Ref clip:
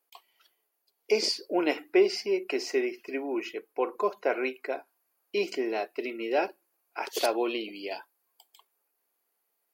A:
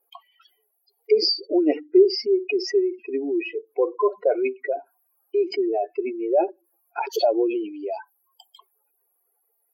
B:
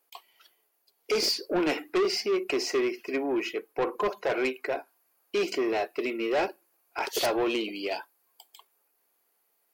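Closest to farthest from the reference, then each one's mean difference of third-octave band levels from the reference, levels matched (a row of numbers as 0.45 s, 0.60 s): B, A; 4.5 dB, 10.5 dB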